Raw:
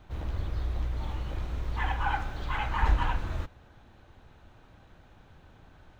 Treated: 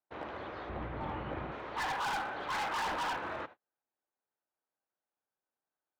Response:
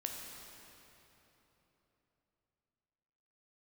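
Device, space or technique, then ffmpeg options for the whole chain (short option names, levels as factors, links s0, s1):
walkie-talkie: -filter_complex "[0:a]highpass=430,lowpass=2200,asoftclip=type=hard:threshold=0.0119,agate=range=0.01:threshold=0.002:ratio=16:detection=peak,asettb=1/sr,asplit=3[s0][s1][s2];[s0]atrim=end=0.694[s3];[s1]atrim=start=0.69:end=1.52,asetpts=PTS-STARTPTS,afade=t=in:d=0.004:c=qsin,afade=t=out:st=0.826:d=0.004:c=qsin,bass=f=250:g=14,treble=f=4000:g=-11[s4];[s2]atrim=start=1.516[s5];[s3][s4]acrossfade=d=0.004:c1=hsin:c2=qsin[s6];[s6][s5]acrossfade=d=0.004:c1=qsin:c2=hsin,volume=2"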